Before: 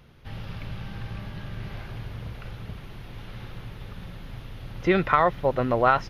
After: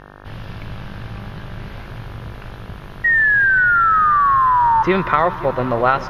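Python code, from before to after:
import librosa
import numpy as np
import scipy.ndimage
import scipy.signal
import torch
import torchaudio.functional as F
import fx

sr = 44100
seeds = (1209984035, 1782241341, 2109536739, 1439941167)

y = fx.dmg_buzz(x, sr, base_hz=50.0, harmonics=36, level_db=-46.0, tilt_db=-1, odd_only=False)
y = fx.spec_paint(y, sr, seeds[0], shape='fall', start_s=3.04, length_s=1.79, low_hz=880.0, high_hz=1900.0, level_db=-18.0)
y = fx.echo_heads(y, sr, ms=177, heads='all three', feedback_pct=66, wet_db=-21.0)
y = y * 10.0 ** (4.0 / 20.0)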